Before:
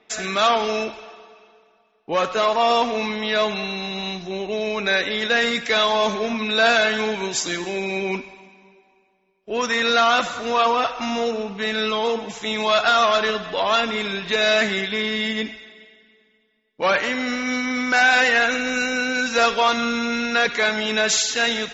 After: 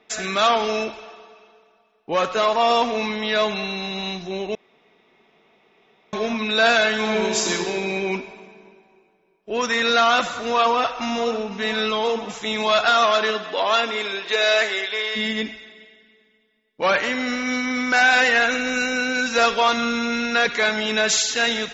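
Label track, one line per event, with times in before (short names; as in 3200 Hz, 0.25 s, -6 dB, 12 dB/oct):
4.550000	6.130000	room tone
6.970000	7.500000	reverb throw, RT60 2.6 s, DRR -0.5 dB
10.660000	11.260000	echo throw 0.5 s, feedback 65%, level -14 dB
12.860000	15.150000	HPF 170 Hz -> 450 Hz 24 dB/oct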